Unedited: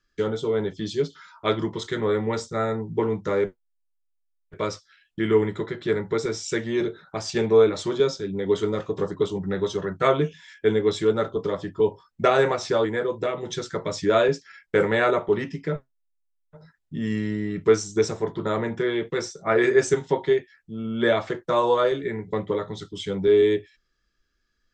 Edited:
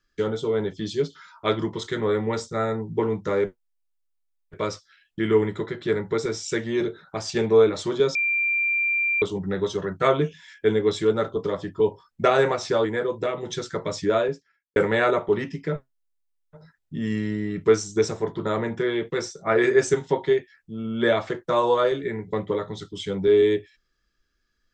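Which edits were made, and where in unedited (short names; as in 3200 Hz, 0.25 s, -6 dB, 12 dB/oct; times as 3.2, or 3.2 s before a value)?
8.15–9.22 bleep 2370 Hz -20 dBFS
13.9–14.76 studio fade out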